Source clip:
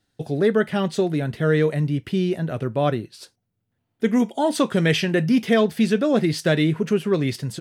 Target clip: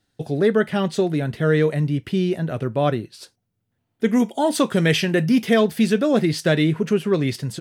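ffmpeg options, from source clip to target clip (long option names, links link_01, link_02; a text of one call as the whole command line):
ffmpeg -i in.wav -filter_complex "[0:a]asettb=1/sr,asplit=3[link_01][link_02][link_03];[link_01]atrim=end=4.094[link_04];[link_02]atrim=start=4.09:end=6.23,asetpts=PTS-STARTPTS,afade=type=in:duration=0.004:curve=qsin,afade=type=out:start_time=2.136:duration=0.004:curve=qsin,highshelf=frequency=9800:gain=7[link_05];[link_03]atrim=start=6.226[link_06];[link_04][link_05]acrossfade=duration=0.004:curve1=hsin:curve2=qsin[link_07];[link_07][link_06]acrossfade=duration=0.004:curve1=qsin:curve2=hsin,volume=1dB" out.wav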